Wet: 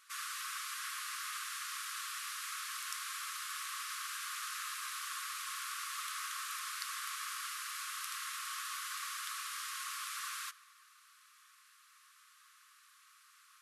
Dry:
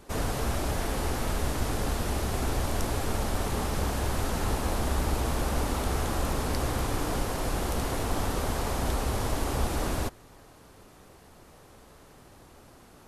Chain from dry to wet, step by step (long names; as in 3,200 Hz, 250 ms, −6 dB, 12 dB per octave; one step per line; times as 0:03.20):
linear-phase brick-wall high-pass 1,100 Hz
on a send at −17 dB: convolution reverb RT60 2.3 s, pre-delay 3 ms
on the sum: wrong playback speed 25 fps video run at 24 fps
level −3.5 dB